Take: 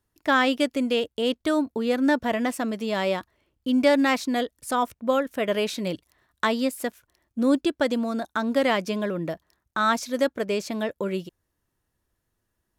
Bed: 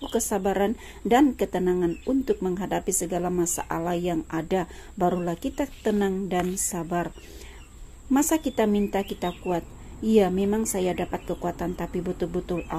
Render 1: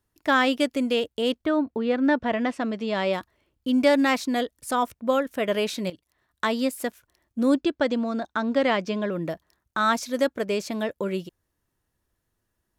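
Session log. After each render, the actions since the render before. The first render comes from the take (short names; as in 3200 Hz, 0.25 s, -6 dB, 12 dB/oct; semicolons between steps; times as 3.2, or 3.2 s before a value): 1.44–3.12 LPF 2400 Hz -> 5500 Hz; 5.9–6.61 fade in, from -15 dB; 7.54–9.12 running mean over 4 samples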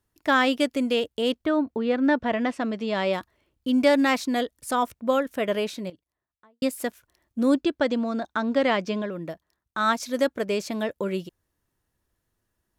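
5.3–6.62 studio fade out; 9.02–10 upward expander, over -33 dBFS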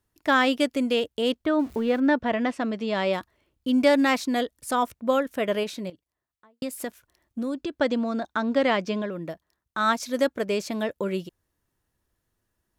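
1.59–2 zero-crossing step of -41.5 dBFS; 5.63–7.78 compressor, threshold -26 dBFS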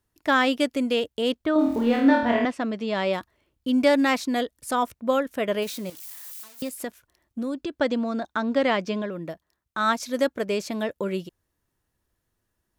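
1.53–2.45 flutter echo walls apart 4.4 m, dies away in 0.62 s; 5.62–6.7 switching spikes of -32 dBFS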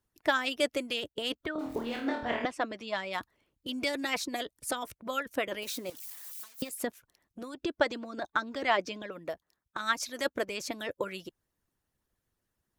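harmonic-percussive split harmonic -16 dB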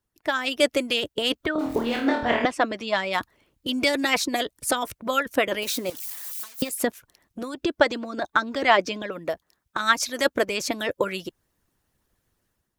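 AGC gain up to 9.5 dB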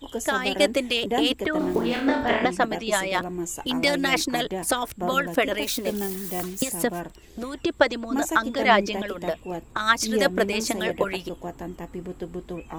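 add bed -6 dB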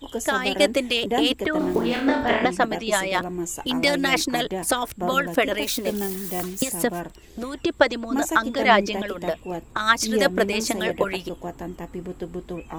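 gain +1.5 dB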